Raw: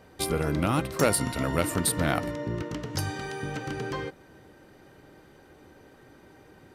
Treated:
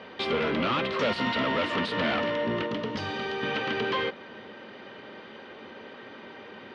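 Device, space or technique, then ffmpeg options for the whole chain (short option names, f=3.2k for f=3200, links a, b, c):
overdrive pedal into a guitar cabinet: -filter_complex "[0:a]asplit=2[a][b];[b]highpass=f=720:p=1,volume=31dB,asoftclip=type=tanh:threshold=-7.5dB[c];[a][c]amix=inputs=2:normalize=0,lowpass=f=3.3k:p=1,volume=-6dB,highpass=93,equalizer=f=150:t=q:w=4:g=-7,equalizer=f=220:t=q:w=4:g=9,equalizer=f=310:t=q:w=4:g=-7,equalizer=f=760:t=q:w=4:g=-6,equalizer=f=1.5k:t=q:w=4:g=-4,equalizer=f=3.1k:t=q:w=4:g=5,lowpass=f=4.2k:w=0.5412,lowpass=f=4.2k:w=1.3066,asettb=1/sr,asplit=3[d][e][f];[d]atrim=end=2.664[g];[e]atrim=start=2.66:end=3.43,asetpts=PTS-STARTPTS,afade=t=in:d=0.004:c=qsin,afade=t=out:st=0.766:d=0.004:c=qsin,equalizer=f=2.1k:t=o:w=2.3:g=-5.5[h];[f]atrim=start=3.426[i];[g][h]acrossfade=d=0.004:c1=hsin:c2=qsin[j];[j][i]acrossfade=d=0.004:c1=qsin:c2=hsin,volume=-9dB"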